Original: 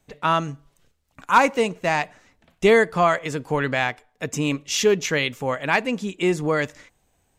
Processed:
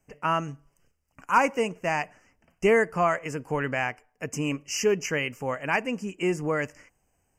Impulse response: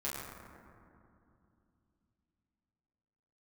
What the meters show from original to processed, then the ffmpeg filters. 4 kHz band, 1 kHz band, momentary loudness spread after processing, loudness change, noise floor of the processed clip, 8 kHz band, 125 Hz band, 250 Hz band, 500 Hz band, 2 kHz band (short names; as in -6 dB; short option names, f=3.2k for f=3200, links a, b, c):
-8.5 dB, -5.0 dB, 10 LU, -5.0 dB, -73 dBFS, -5.0 dB, -5.0 dB, -5.0 dB, -5.0 dB, -5.0 dB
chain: -af "asuperstop=centerf=3800:order=20:qfactor=2.4,volume=-5dB"